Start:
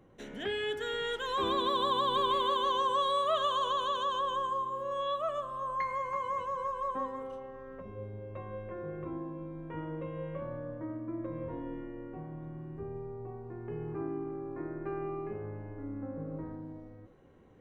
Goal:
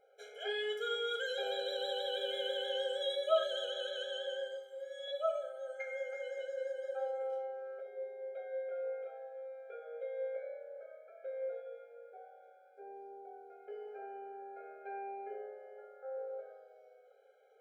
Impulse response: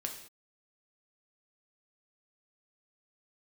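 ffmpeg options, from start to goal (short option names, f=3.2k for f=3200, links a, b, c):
-filter_complex "[0:a]asettb=1/sr,asplit=3[a][b][c];[a]atrim=end=4.544[d];[b]atrim=start=4.54:end=5.08,asetpts=PTS-STARTPTS,afade=t=in:d=0.004:c=qsin,afade=t=out:st=0.536:d=0.004:c=qsin,lowshelf=f=490:g=-11.5[e];[c]atrim=start=5.076[f];[d][e]acrossfade=d=0.004:c1=hsin:c2=qsin[g];[g][f]acrossfade=d=0.004:c1=qsin:c2=hsin[h];[1:a]atrim=start_sample=2205,afade=t=out:st=0.14:d=0.01,atrim=end_sample=6615[i];[h][i]afir=irnorm=-1:irlink=0,afftfilt=real='re*eq(mod(floor(b*sr/1024/420),2),1)':imag='im*eq(mod(floor(b*sr/1024/420),2),1)':win_size=1024:overlap=0.75"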